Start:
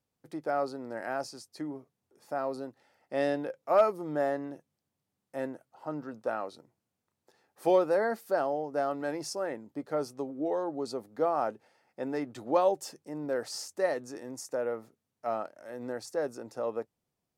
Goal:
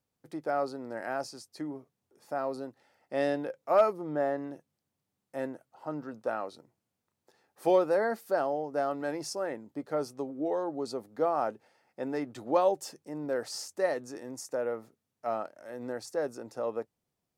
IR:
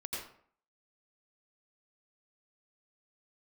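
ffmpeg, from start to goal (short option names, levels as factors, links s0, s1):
-filter_complex "[0:a]asettb=1/sr,asplit=3[s0][s1][s2];[s0]atrim=end=3.934[s3];[s1]atrim=start=3.93:end=4.38,asetpts=PTS-STARTPTS,afade=t=in:d=0.004:c=qsin,afade=t=out:st=0.446:d=0.004:c=qsin,highshelf=f=3800:g=-9.5[s4];[s2]atrim=start=4.376[s5];[s3][s4]acrossfade=d=0.004:c1=hsin:c2=qsin[s6];[s6][s5]acrossfade=d=0.004:c1=qsin:c2=hsin"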